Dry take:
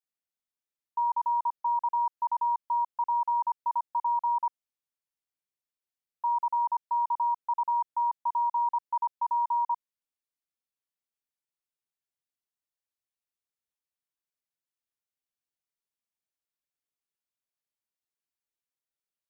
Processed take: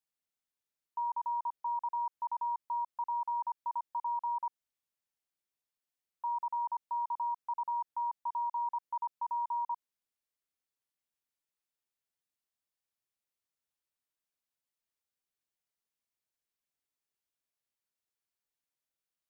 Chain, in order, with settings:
brickwall limiter −30 dBFS, peak gain reduction 7 dB

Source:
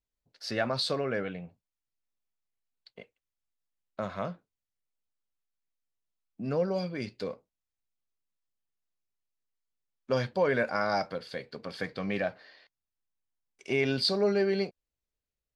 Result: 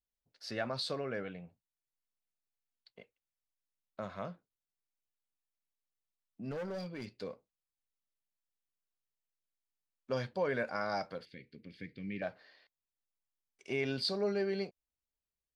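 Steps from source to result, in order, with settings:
0:06.51–0:07.14: gain into a clipping stage and back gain 29.5 dB
0:11.25–0:12.22: drawn EQ curve 330 Hz 0 dB, 730 Hz −26 dB, 1,200 Hz −27 dB, 2,100 Hz −1 dB, 7,000 Hz −17 dB
level −7 dB

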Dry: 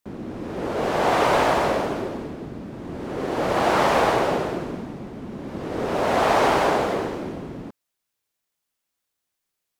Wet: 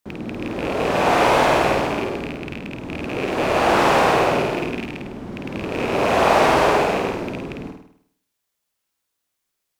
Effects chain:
loose part that buzzes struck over −31 dBFS, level −19 dBFS
flutter between parallel walls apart 8.8 metres, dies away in 0.65 s
level +1.5 dB

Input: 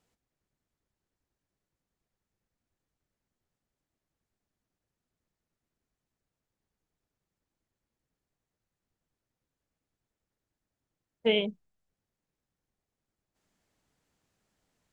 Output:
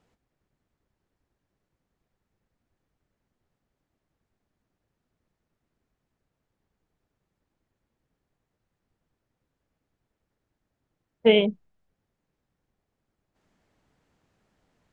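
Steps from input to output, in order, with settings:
low-pass filter 2,200 Hz 6 dB per octave
level +8.5 dB

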